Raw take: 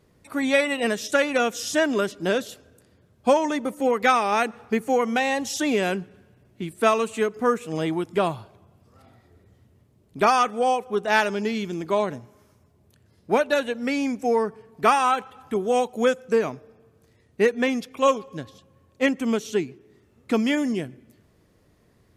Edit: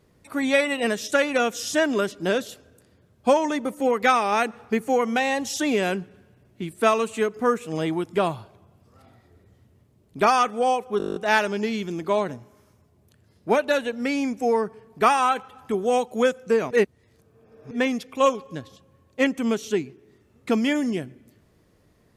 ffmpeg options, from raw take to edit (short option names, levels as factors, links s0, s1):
-filter_complex "[0:a]asplit=12[s0][s1][s2][s3][s4][s5][s6][s7][s8][s9][s10][s11];[s0]atrim=end=11.002[s12];[s1]atrim=start=10.978:end=11.002[s13];[s2]atrim=start=10.978:end=11.002[s14];[s3]atrim=start=10.978:end=11.002[s15];[s4]atrim=start=10.978:end=11.002[s16];[s5]atrim=start=10.978:end=11.002[s17];[s6]atrim=start=10.978:end=11.002[s18];[s7]atrim=start=10.978:end=11.002[s19];[s8]atrim=start=10.978:end=11.002[s20];[s9]atrim=start=10.978:end=16.532[s21];[s10]atrim=start=16.528:end=17.532,asetpts=PTS-STARTPTS,areverse[s22];[s11]atrim=start=17.528[s23];[s12][s13]acrossfade=d=0.004:c1=hsin:c2=hsin[s24];[s24][s14]acrossfade=d=0.004:c1=hsin:c2=hsin[s25];[s25][s15]acrossfade=d=0.004:c1=hsin:c2=hsin[s26];[s26][s16]acrossfade=d=0.004:c1=hsin:c2=hsin[s27];[s27][s17]acrossfade=d=0.004:c1=hsin:c2=hsin[s28];[s28][s18]acrossfade=d=0.004:c1=hsin:c2=hsin[s29];[s29][s19]acrossfade=d=0.004:c1=hsin:c2=hsin[s30];[s30][s20]acrossfade=d=0.004:c1=hsin:c2=hsin[s31];[s31][s21]acrossfade=d=0.004:c1=hsin:c2=hsin[s32];[s32][s22]acrossfade=d=0.004:c1=hsin:c2=hsin[s33];[s33][s23]acrossfade=d=0.004:c1=hsin:c2=hsin"